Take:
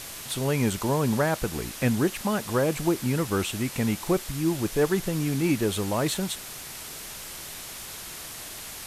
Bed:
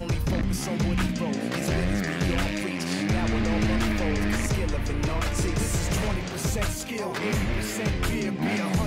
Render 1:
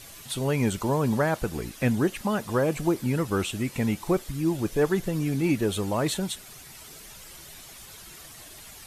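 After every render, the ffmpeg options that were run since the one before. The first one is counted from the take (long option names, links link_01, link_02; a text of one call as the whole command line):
ffmpeg -i in.wav -af "afftdn=noise_reduction=10:noise_floor=-40" out.wav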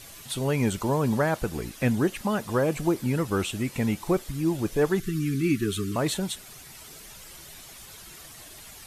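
ffmpeg -i in.wav -filter_complex "[0:a]asettb=1/sr,asplit=3[link_01][link_02][link_03];[link_01]atrim=end=5.004[link_04];[link_02]atrim=start=5:end=5.96,asetpts=PTS-STARTPTS,afade=type=in:duration=0.004:curve=qsin,afade=type=out:start_time=0.956:duration=0.004:curve=qsin,asuperstop=centerf=690:order=20:qfactor=0.96[link_05];[link_03]atrim=start=5.956[link_06];[link_04][link_05]acrossfade=duration=0.004:curve1=hsin:curve2=qsin[link_07];[link_07][link_06]acrossfade=duration=0.004:curve1=qsin:curve2=hsin" out.wav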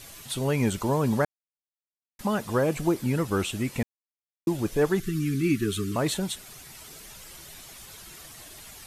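ffmpeg -i in.wav -filter_complex "[0:a]asplit=5[link_01][link_02][link_03][link_04][link_05];[link_01]atrim=end=1.25,asetpts=PTS-STARTPTS,afade=type=out:start_time=1.246:duration=0.004:curve=hsin[link_06];[link_02]atrim=start=1.25:end=2.19,asetpts=PTS-STARTPTS,volume=0[link_07];[link_03]atrim=start=2.19:end=3.83,asetpts=PTS-STARTPTS,afade=type=in:duration=0.004:curve=hsin,afade=type=out:start_time=1.636:duration=0.004:curve=hsin[link_08];[link_04]atrim=start=3.83:end=4.47,asetpts=PTS-STARTPTS,volume=0[link_09];[link_05]atrim=start=4.47,asetpts=PTS-STARTPTS,afade=type=in:duration=0.004:curve=hsin[link_10];[link_06][link_07][link_08][link_09][link_10]concat=n=5:v=0:a=1" out.wav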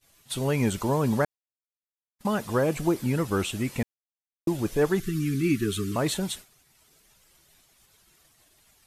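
ffmpeg -i in.wav -af "agate=range=-33dB:threshold=-34dB:ratio=3:detection=peak" out.wav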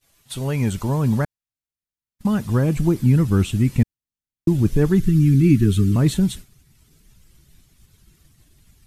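ffmpeg -i in.wav -af "asubboost=boost=8.5:cutoff=220" out.wav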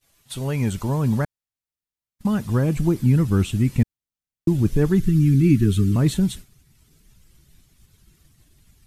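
ffmpeg -i in.wav -af "volume=-1.5dB" out.wav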